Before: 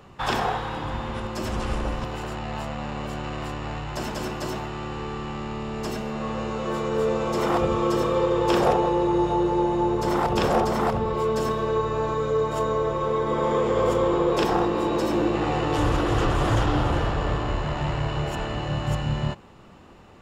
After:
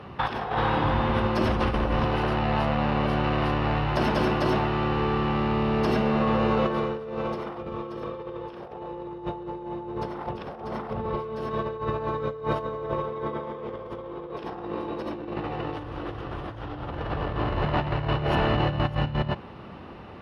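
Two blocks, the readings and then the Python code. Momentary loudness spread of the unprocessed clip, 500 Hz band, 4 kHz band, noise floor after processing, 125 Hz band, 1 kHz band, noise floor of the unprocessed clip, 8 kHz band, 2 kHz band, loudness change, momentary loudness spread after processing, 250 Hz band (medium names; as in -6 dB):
10 LU, -4.5 dB, -2.0 dB, -41 dBFS, -0.5 dB, -2.5 dB, -47 dBFS, under -15 dB, 0.0 dB, -2.5 dB, 12 LU, -2.0 dB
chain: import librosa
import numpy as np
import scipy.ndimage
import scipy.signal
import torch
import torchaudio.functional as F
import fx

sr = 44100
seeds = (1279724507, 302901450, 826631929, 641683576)

y = scipy.signal.sosfilt(scipy.signal.butter(2, 50.0, 'highpass', fs=sr, output='sos'), x)
y = fx.over_compress(y, sr, threshold_db=-29.0, ratio=-0.5)
y = scipy.signal.lfilter(np.full(6, 1.0 / 6), 1.0, y)
y = y * librosa.db_to_amplitude(2.5)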